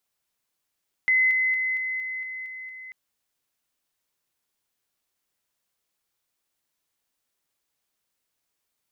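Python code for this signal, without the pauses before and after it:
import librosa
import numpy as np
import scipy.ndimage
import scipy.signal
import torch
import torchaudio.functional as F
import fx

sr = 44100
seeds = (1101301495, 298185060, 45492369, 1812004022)

y = fx.level_ladder(sr, hz=2040.0, from_db=-17.0, step_db=-3.0, steps=8, dwell_s=0.23, gap_s=0.0)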